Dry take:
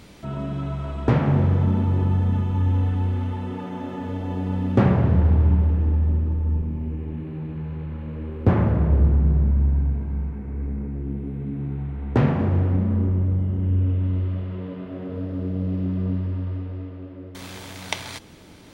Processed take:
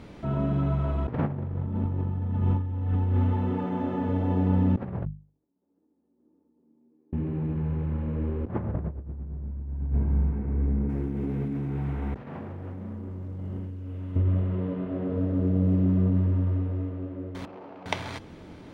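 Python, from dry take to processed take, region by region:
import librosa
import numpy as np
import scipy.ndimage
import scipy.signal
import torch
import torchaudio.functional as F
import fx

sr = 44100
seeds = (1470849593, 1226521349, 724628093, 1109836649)

y = fx.chain(x, sr, fx.differentiator(),
    fx.over_compress(threshold_db=-59.0, ratio=-0.5),
    fx.ladder_bandpass(hz=310.0, resonance_pct=55), at=(5.05, 7.13))
y = fx.chain(y, sr, fx.tilt_eq(slope=2.5),
    fx.over_compress(threshold_db=-36.0, ratio=-1.0),
    fx.quant_float(bits=4), at=(10.89, 14.16))
y = fx.chain(y, sr, fx.median_filter(points=25),
    fx.bandpass_edges(low_hz=350.0, high_hz=3600.0), at=(17.45, 17.86))
y = fx.lowpass(y, sr, hz=1300.0, slope=6)
y = fx.hum_notches(y, sr, base_hz=50, count=4)
y = fx.over_compress(y, sr, threshold_db=-24.0, ratio=-0.5)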